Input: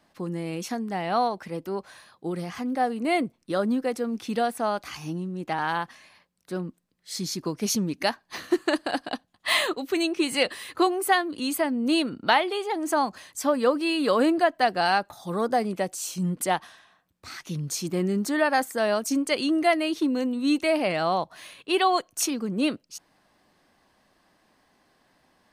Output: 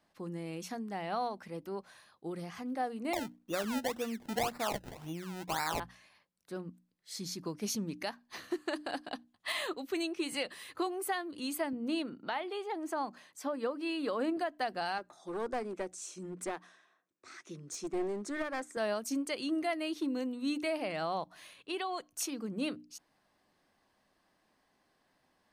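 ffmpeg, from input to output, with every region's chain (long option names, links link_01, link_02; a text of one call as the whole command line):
ffmpeg -i in.wav -filter_complex "[0:a]asettb=1/sr,asplit=3[link_01][link_02][link_03];[link_01]atrim=end=3.134[link_04];[link_02]atrim=start=3.13:end=5.8,asetpts=PTS-STARTPTS,afade=type=in:duration=0.004:curve=qsin,afade=type=out:start_time=2.666:duration=0.004:curve=qsin,asuperstop=centerf=4900:order=4:qfactor=0.59,equalizer=frequency=1500:width=0.48:gain=5,acrusher=samples=27:mix=1:aa=0.000001:lfo=1:lforange=27:lforate=1.9[link_05];[link_03]atrim=start=5.796[link_06];[link_04][link_05]acrossfade=duration=0.004:curve1=hsin:curve2=qsin[link_07];[link_07][link_06]acrossfade=duration=0.004:curve1=qsin:curve2=hsin,asettb=1/sr,asplit=3[link_08][link_09][link_10];[link_08]atrim=end=11.734[link_11];[link_09]atrim=start=11.73:end=14.37,asetpts=PTS-STARTPTS,afade=type=in:duration=0.004:curve=qsin,afade=type=out:start_time=2.636:duration=0.004:curve=qsin,highpass=170,highshelf=frequency=4200:gain=-8[link_12];[link_10]atrim=start=14.366[link_13];[link_11][link_12]acrossfade=duration=0.004:curve1=hsin:curve2=qsin[link_14];[link_14][link_13]acrossfade=duration=0.004:curve1=qsin:curve2=hsin,asettb=1/sr,asplit=3[link_15][link_16][link_17];[link_15]atrim=end=14.984[link_18];[link_16]atrim=start=14.98:end=18.77,asetpts=PTS-STARTPTS,afade=type=in:duration=0.004:curve=qsin,afade=type=out:start_time=3.786:duration=0.004:curve=qsin,highpass=270,equalizer=frequency=360:width_type=q:width=4:gain=8,equalizer=frequency=840:width_type=q:width=4:gain=-6,equalizer=frequency=3000:width_type=q:width=4:gain=-7,equalizer=frequency=4500:width_type=q:width=4:gain=-8,lowpass=frequency=8600:width=0.5412,lowpass=frequency=8600:width=1.3066,aeval=exprs='clip(val(0),-1,0.0473)':channel_layout=same[link_19];[link_17]atrim=start=18.766[link_20];[link_18][link_19]acrossfade=duration=0.004:curve1=hsin:curve2=qsin[link_21];[link_21][link_20]acrossfade=duration=0.004:curve1=qsin:curve2=hsin,asettb=1/sr,asplit=3[link_22][link_23][link_24];[link_22]atrim=end=21.564[link_25];[link_23]atrim=start=21.56:end=22.11,asetpts=PTS-STARTPTS,afade=type=in:duration=0.004:curve=qsin,afade=type=out:start_time=0.546:duration=0.004:curve=qsin,lowpass=12000,acompressor=threshold=-24dB:ratio=4:attack=3.2:release=140:knee=1:detection=peak[link_26];[link_24]atrim=start=22.106[link_27];[link_25][link_26]acrossfade=duration=0.004:curve1=hsin:curve2=qsin[link_28];[link_28][link_27]acrossfade=duration=0.004:curve1=qsin:curve2=hsin,bandreject=frequency=60:width_type=h:width=6,bandreject=frequency=120:width_type=h:width=6,bandreject=frequency=180:width_type=h:width=6,bandreject=frequency=240:width_type=h:width=6,bandreject=frequency=300:width_type=h:width=6,alimiter=limit=-15.5dB:level=0:latency=1:release=178,volume=-9dB" out.wav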